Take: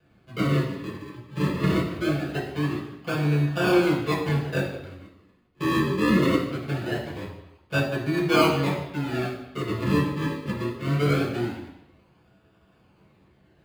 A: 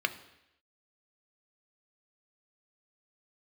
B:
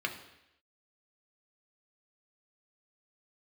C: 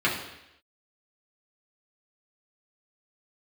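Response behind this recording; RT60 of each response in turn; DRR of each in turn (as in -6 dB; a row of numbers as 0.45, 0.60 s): C; 0.85, 0.85, 0.85 s; 8.5, 2.5, -6.5 dB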